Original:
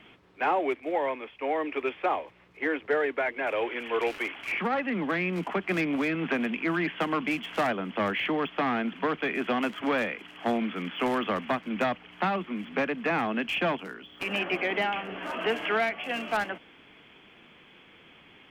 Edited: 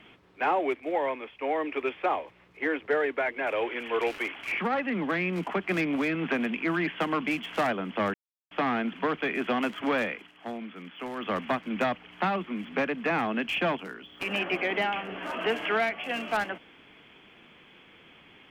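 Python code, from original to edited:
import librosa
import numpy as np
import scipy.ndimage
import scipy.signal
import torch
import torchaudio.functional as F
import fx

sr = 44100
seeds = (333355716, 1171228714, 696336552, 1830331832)

y = fx.edit(x, sr, fx.silence(start_s=8.14, length_s=0.37),
    fx.fade_down_up(start_s=10.12, length_s=1.23, db=-9.5, fade_s=0.2), tone=tone)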